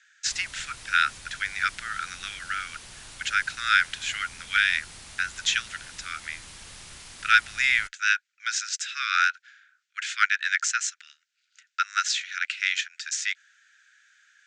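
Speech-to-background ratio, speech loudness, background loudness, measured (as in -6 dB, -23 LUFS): 17.0 dB, -26.0 LUFS, -43.0 LUFS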